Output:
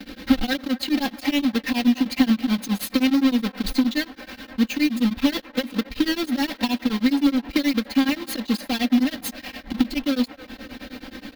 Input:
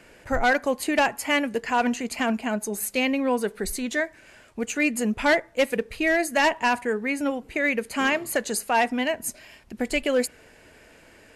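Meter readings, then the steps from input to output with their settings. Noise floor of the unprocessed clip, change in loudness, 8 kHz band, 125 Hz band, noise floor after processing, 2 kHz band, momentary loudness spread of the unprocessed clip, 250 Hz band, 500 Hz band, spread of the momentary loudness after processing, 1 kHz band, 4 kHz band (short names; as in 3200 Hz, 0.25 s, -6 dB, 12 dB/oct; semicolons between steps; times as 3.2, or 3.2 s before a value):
-53 dBFS, +2.0 dB, -5.5 dB, n/a, -48 dBFS, -6.0 dB, 8 LU, +8.0 dB, -8.0 dB, 13 LU, -7.5 dB, +5.0 dB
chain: half-waves squared off; comb 3.8 ms, depth 97%; gate with hold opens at -45 dBFS; compressor 6:1, threshold -28 dBFS, peak gain reduction 16.5 dB; graphic EQ 250/500/1000/4000/8000 Hz +10/-6/-3/+10/-12 dB; on a send: band-limited delay 0.251 s, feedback 85%, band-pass 970 Hz, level -14.5 dB; on the sum: beating tremolo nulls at 9.5 Hz; gain +6 dB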